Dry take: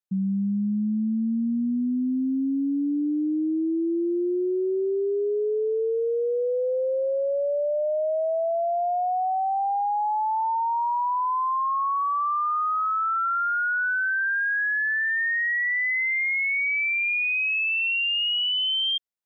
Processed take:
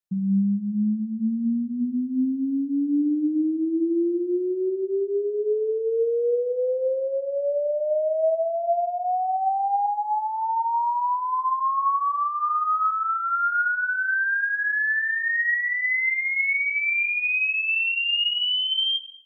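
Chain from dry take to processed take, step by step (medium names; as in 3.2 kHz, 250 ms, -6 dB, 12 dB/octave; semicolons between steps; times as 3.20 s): 9.86–11.39 s: tilt EQ +3 dB/octave; simulated room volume 440 m³, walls mixed, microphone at 0.56 m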